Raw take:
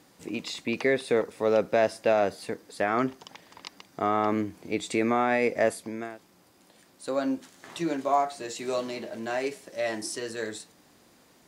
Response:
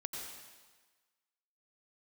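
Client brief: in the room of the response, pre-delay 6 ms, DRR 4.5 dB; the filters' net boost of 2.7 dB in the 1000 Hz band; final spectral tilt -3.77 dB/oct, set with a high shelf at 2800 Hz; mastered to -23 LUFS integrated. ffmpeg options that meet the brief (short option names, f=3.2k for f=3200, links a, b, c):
-filter_complex "[0:a]equalizer=f=1k:t=o:g=3.5,highshelf=f=2.8k:g=4,asplit=2[a][b];[1:a]atrim=start_sample=2205,adelay=6[c];[b][c]afir=irnorm=-1:irlink=0,volume=-4.5dB[d];[a][d]amix=inputs=2:normalize=0,volume=3dB"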